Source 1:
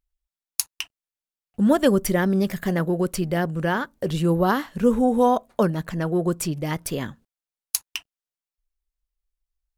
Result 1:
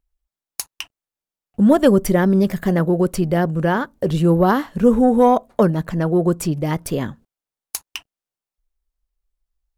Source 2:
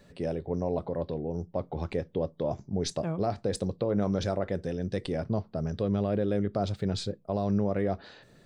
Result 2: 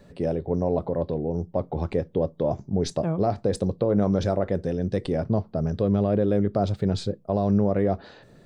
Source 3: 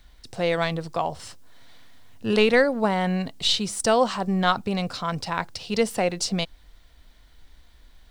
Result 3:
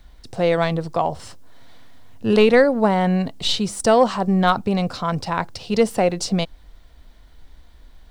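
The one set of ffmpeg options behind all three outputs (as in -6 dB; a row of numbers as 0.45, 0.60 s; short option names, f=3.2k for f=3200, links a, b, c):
-filter_complex "[0:a]acrossover=split=1200[a][b];[a]acontrast=50[c];[b]asoftclip=type=hard:threshold=-12.5dB[d];[c][d]amix=inputs=2:normalize=0"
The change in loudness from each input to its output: +5.5, +5.5, +4.5 LU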